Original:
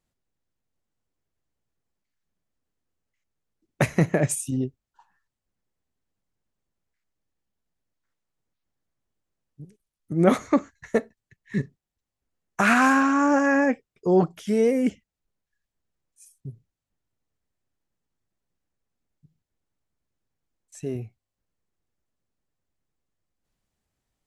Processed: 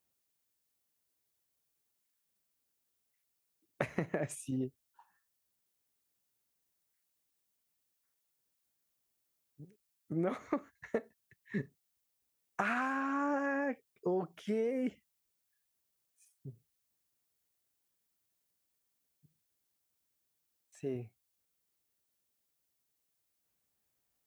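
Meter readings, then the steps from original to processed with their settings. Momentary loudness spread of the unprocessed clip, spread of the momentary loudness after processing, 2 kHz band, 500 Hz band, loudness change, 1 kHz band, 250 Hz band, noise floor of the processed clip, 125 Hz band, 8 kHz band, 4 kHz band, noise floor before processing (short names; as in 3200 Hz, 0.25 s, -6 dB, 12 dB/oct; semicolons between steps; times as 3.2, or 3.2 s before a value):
15 LU, 12 LU, -14.0 dB, -12.5 dB, -14.0 dB, -13.5 dB, -14.5 dB, -82 dBFS, -15.5 dB, -18.0 dB, -16.0 dB, under -85 dBFS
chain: HPF 54 Hz; tone controls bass -6 dB, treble -11 dB; compressor 10:1, threshold -25 dBFS, peak gain reduction 12.5 dB; added noise blue -77 dBFS; gain -5 dB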